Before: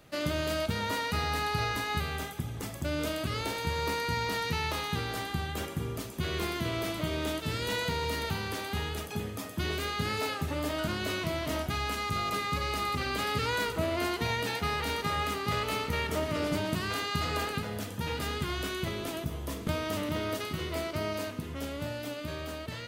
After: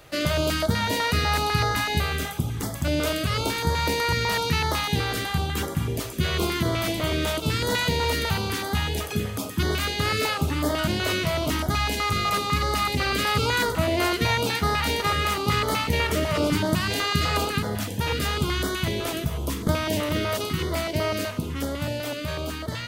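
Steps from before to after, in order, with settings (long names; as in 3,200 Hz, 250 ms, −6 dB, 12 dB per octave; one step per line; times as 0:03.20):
notch on a step sequencer 8 Hz 210–2,600 Hz
level +9 dB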